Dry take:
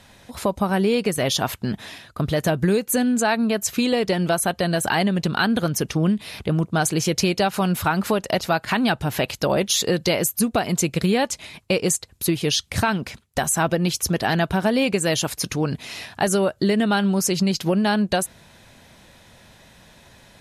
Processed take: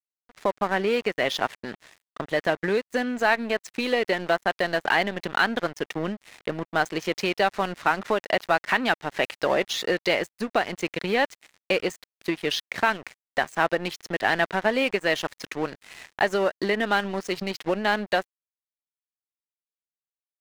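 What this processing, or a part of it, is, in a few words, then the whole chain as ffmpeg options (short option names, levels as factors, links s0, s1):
pocket radio on a weak battery: -af "highpass=340,lowpass=3500,aeval=exprs='sgn(val(0))*max(abs(val(0))-0.0158,0)':c=same,equalizer=f=1900:t=o:w=0.43:g=6"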